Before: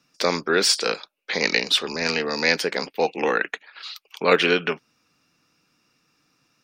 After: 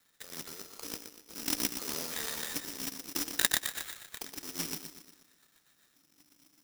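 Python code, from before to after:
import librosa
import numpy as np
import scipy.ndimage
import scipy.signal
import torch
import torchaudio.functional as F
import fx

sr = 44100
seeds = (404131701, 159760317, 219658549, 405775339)

y = fx.cvsd(x, sr, bps=64000)
y = fx.spec_erase(y, sr, start_s=0.44, length_s=1.67, low_hz=1400.0, high_hz=3300.0)
y = fx.over_compress(y, sr, threshold_db=-32.0, ratio=-1.0)
y = fx.rotary_switch(y, sr, hz=0.8, then_hz=7.5, switch_at_s=3.83)
y = fx.filter_lfo_lowpass(y, sr, shape='square', hz=0.59, low_hz=290.0, high_hz=1800.0, q=6.1)
y = fx.echo_feedback(y, sr, ms=120, feedback_pct=47, wet_db=-7.0)
y = (np.kron(scipy.signal.resample_poly(y, 1, 8), np.eye(8)[0]) * 8)[:len(y)]
y = fx.clock_jitter(y, sr, seeds[0], jitter_ms=0.023)
y = y * 10.0 ** (-17.0 / 20.0)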